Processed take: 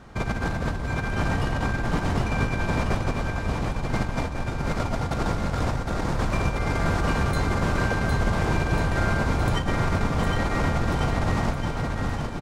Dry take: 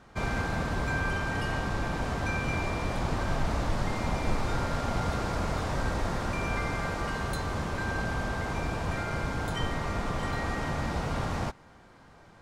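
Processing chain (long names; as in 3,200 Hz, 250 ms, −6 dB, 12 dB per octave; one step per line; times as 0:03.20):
low-shelf EQ 320 Hz +5.5 dB
compressor whose output falls as the input rises −28 dBFS, ratio −0.5
bouncing-ball delay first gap 760 ms, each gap 0.9×, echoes 5
level +2.5 dB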